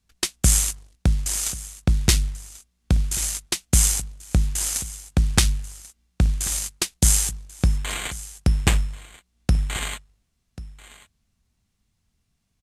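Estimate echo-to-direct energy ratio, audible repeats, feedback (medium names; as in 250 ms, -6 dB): -18.0 dB, 1, no regular repeats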